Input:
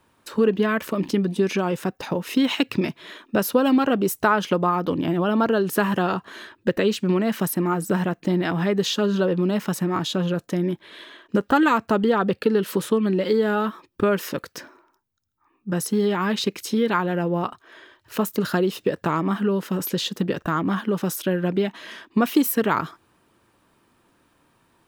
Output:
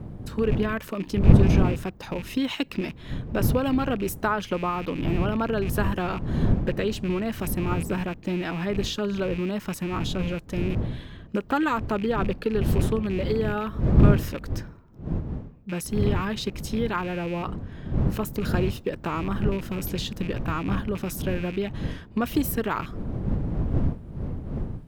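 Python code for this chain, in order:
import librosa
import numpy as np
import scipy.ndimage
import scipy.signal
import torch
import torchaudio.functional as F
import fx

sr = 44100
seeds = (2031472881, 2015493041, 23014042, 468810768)

y = fx.rattle_buzz(x, sr, strikes_db=-33.0, level_db=-24.0)
y = fx.dmg_wind(y, sr, seeds[0], corner_hz=160.0, level_db=-21.0)
y = y * 10.0 ** (-6.0 / 20.0)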